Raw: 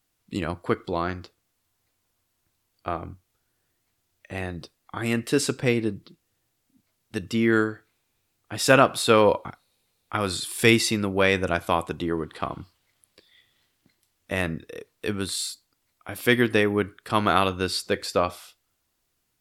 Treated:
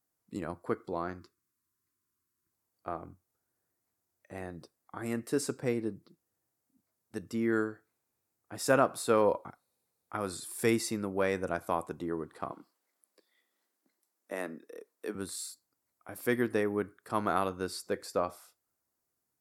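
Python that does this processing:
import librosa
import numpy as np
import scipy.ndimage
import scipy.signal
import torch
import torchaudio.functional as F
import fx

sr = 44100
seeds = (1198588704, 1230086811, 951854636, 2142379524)

y = fx.spec_box(x, sr, start_s=1.19, length_s=1.34, low_hz=430.0, high_hz=970.0, gain_db=-15)
y = fx.highpass(y, sr, hz=230.0, slope=24, at=(12.52, 15.15))
y = fx.highpass(y, sr, hz=190.0, slope=6)
y = fx.peak_eq(y, sr, hz=3100.0, db=-14.5, octaves=1.2)
y = F.gain(torch.from_numpy(y), -6.5).numpy()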